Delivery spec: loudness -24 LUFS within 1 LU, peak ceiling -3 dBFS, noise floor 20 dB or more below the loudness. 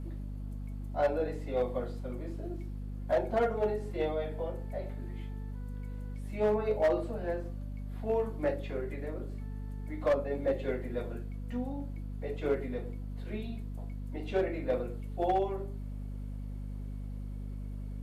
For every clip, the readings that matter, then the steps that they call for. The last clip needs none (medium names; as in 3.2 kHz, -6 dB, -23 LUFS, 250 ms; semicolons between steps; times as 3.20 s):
clipped samples 0.6%; clipping level -21.5 dBFS; hum 50 Hz; highest harmonic 250 Hz; hum level -36 dBFS; loudness -35.0 LUFS; peak level -21.5 dBFS; loudness target -24.0 LUFS
-> clip repair -21.5 dBFS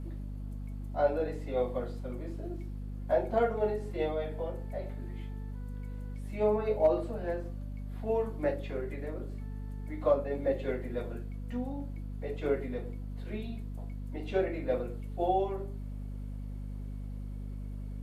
clipped samples 0.0%; hum 50 Hz; highest harmonic 250 Hz; hum level -36 dBFS
-> hum notches 50/100/150/200/250 Hz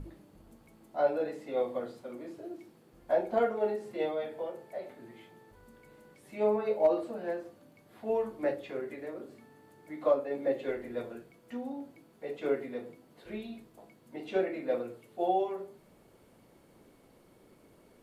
hum not found; loudness -33.5 LUFS; peak level -14.0 dBFS; loudness target -24.0 LUFS
-> trim +9.5 dB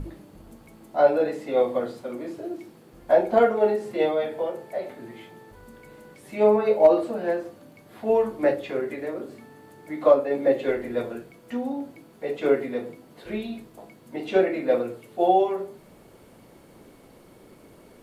loudness -24.0 LUFS; peak level -4.5 dBFS; noise floor -52 dBFS